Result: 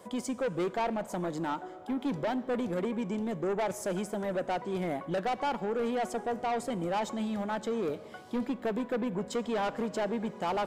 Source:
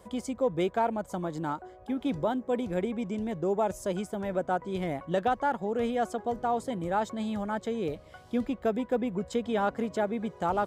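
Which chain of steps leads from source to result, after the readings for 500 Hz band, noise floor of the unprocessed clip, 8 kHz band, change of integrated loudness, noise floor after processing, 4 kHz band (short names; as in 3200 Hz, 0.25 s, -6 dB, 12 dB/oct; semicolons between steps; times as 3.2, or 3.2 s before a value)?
-2.0 dB, -53 dBFS, +2.5 dB, -2.0 dB, -47 dBFS, +1.0 dB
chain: HPF 170 Hz 12 dB/oct; soft clip -29.5 dBFS, distortion -9 dB; plate-style reverb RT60 1.9 s, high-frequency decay 0.8×, DRR 15.5 dB; gain +3 dB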